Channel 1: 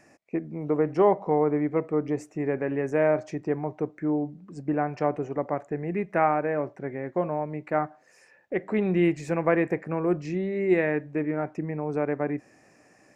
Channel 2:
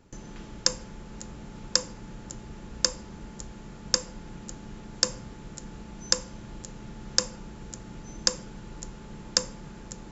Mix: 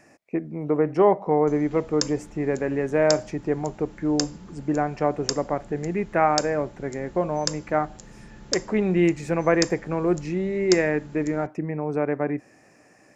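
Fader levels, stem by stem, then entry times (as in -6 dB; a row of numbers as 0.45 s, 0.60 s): +2.5 dB, -3.5 dB; 0.00 s, 1.35 s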